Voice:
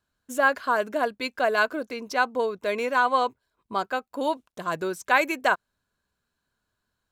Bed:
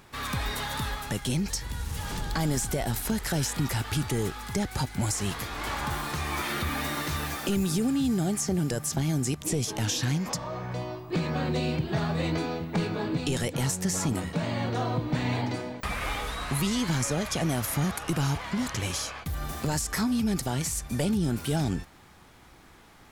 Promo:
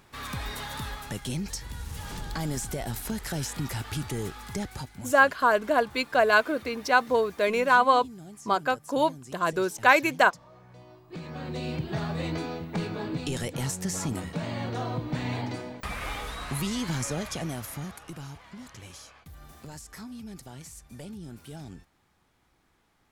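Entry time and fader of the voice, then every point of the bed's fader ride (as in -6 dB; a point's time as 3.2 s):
4.75 s, +2.0 dB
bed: 4.63 s -4 dB
5.21 s -18 dB
10.72 s -18 dB
11.78 s -3 dB
17.19 s -3 dB
18.32 s -15 dB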